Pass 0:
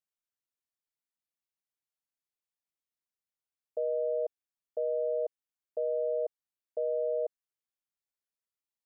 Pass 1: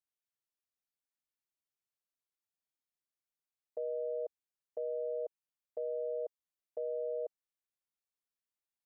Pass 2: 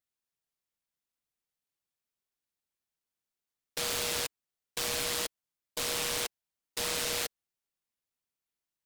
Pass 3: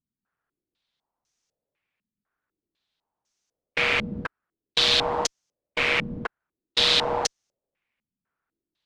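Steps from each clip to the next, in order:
dynamic EQ 630 Hz, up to -3 dB, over -45 dBFS, Q 3.6; gain -4.5 dB
noise-modulated delay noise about 3600 Hz, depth 0.46 ms; gain +4 dB
in parallel at -9 dB: one-sided clip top -33 dBFS, bottom -31.5 dBFS; on the sum: stepped low-pass 4 Hz 210–6100 Hz; gain +6.5 dB

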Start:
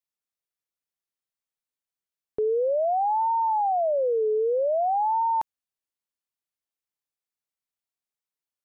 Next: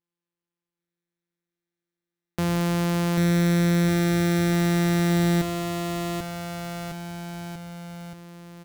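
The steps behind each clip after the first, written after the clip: sample sorter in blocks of 256 samples; on a send: bouncing-ball echo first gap 0.79 s, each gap 0.9×, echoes 5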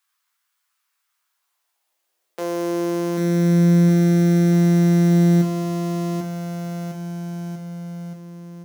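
requantised 12-bit, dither triangular; high-pass sweep 1200 Hz -> 170 Hz, 1.2–3.64; resonator bank C#2 major, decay 0.26 s; gain +7.5 dB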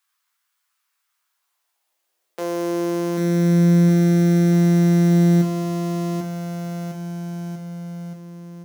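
nothing audible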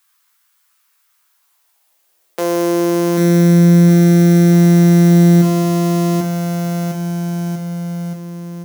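high shelf 8900 Hz +6.5 dB; in parallel at +2 dB: limiter -14.5 dBFS, peak gain reduction 7.5 dB; on the sum: gain +2 dB

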